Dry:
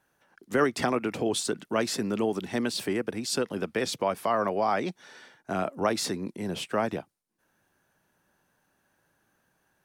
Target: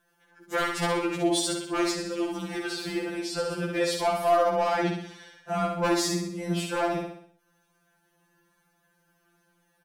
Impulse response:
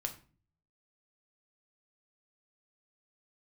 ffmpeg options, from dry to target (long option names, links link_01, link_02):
-filter_complex "[0:a]aeval=exprs='0.126*(abs(mod(val(0)/0.126+3,4)-2)-1)':channel_layout=same,aecho=1:1:64|128|192|256|320|384:0.631|0.309|0.151|0.0742|0.0364|0.0178,asettb=1/sr,asplit=3[link_01][link_02][link_03];[link_01]atrim=end=1.914[link_04];[link_02]atrim=start=1.91:end=3.5,asetpts=PTS-STARTPTS,afade=type=in:duration=0.004:curve=qsin,afade=type=out:start_time=1.586:duration=0.004:curve=qsin,acrossover=split=2500|7900[link_05][link_06][link_07];[link_05]acompressor=threshold=-26dB:ratio=4[link_08];[link_06]acompressor=threshold=-38dB:ratio=4[link_09];[link_07]acompressor=threshold=-54dB:ratio=4[link_10];[link_08][link_09][link_10]amix=inputs=3:normalize=0[link_11];[link_03]atrim=start=3.496[link_12];[link_04][link_11]acrossfade=duration=0.004:curve1=hsin:curve2=qsin[link_13];[link_13][link_12]acrossfade=duration=0.004:curve1=qsin:curve2=hsin,afftfilt=real='re*2.83*eq(mod(b,8),0)':imag='im*2.83*eq(mod(b,8),0)':win_size=2048:overlap=0.75,volume=3dB"